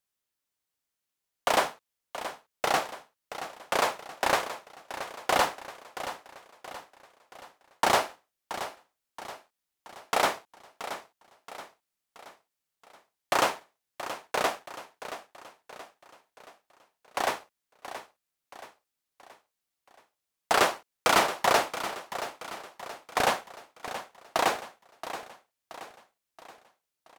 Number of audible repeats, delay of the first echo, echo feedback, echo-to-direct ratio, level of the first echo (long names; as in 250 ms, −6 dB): 4, 676 ms, 48%, −11.0 dB, −12.0 dB